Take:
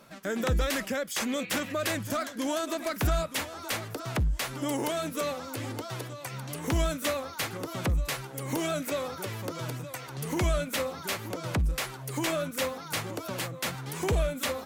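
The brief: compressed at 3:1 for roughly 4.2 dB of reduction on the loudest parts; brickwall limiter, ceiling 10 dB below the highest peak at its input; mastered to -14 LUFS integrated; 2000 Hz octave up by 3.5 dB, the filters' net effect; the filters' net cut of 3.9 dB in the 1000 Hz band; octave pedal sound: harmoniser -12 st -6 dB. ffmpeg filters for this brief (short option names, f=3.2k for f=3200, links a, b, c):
-filter_complex "[0:a]equalizer=f=1k:t=o:g=-8,equalizer=f=2k:t=o:g=6.5,acompressor=threshold=-28dB:ratio=3,alimiter=level_in=3.5dB:limit=-24dB:level=0:latency=1,volume=-3.5dB,asplit=2[a][b];[b]asetrate=22050,aresample=44100,atempo=2,volume=-6dB[c];[a][c]amix=inputs=2:normalize=0,volume=22dB"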